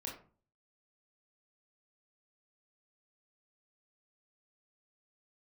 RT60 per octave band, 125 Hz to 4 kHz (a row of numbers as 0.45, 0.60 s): 0.65, 0.55, 0.40, 0.40, 0.30, 0.20 s